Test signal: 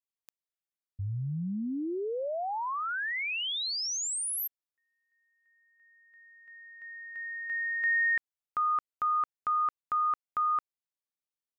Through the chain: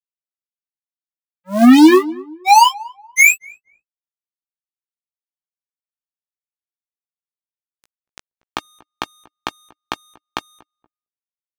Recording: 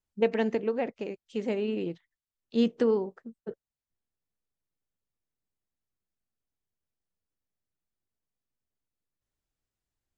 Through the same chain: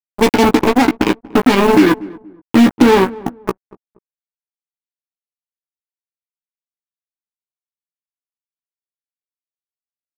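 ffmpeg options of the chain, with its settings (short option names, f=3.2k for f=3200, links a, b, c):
-filter_complex "[0:a]lowpass=3.7k,asplit=2[a][b];[b]acompressor=threshold=-36dB:ratio=10:attack=1.2:release=154:knee=6:detection=rms,volume=0dB[c];[a][c]amix=inputs=2:normalize=0,asplit=3[d][e][f];[d]bandpass=f=300:t=q:w=8,volume=0dB[g];[e]bandpass=f=870:t=q:w=8,volume=-6dB[h];[f]bandpass=f=2.24k:t=q:w=8,volume=-9dB[i];[g][h][i]amix=inputs=3:normalize=0,aeval=exprs='sgn(val(0))*max(abs(val(0))-0.00237,0)':c=same,acrusher=bits=6:mix=0:aa=0.5,asoftclip=type=tanh:threshold=-36dB,acrusher=bits=5:mode=log:mix=0:aa=0.000001,asplit=2[j][k];[k]adelay=16,volume=-5.5dB[l];[j][l]amix=inputs=2:normalize=0,asplit=2[m][n];[n]adelay=237,lowpass=f=850:p=1,volume=-21dB,asplit=2[o][p];[p]adelay=237,lowpass=f=850:p=1,volume=0.32[q];[m][o][q]amix=inputs=3:normalize=0,alimiter=level_in=36dB:limit=-1dB:release=50:level=0:latency=1,volume=-1dB"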